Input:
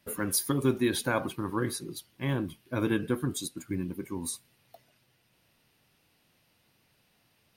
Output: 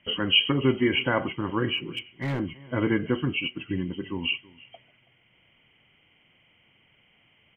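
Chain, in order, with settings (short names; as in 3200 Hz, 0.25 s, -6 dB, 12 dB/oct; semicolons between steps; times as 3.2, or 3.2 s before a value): nonlinear frequency compression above 1900 Hz 4:1; outdoor echo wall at 56 m, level -22 dB; 1.77–2.4 overloaded stage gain 28 dB; gain +3.5 dB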